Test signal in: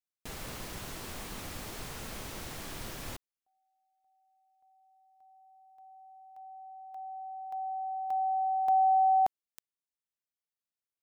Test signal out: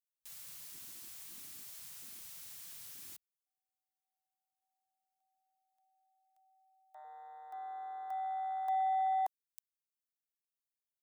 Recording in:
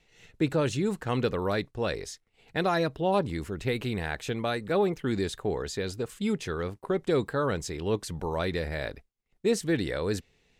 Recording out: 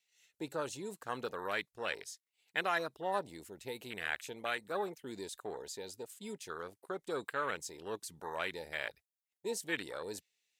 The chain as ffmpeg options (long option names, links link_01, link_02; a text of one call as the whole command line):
ffmpeg -i in.wav -af "afwtdn=0.02,aderivative,volume=11.5dB" out.wav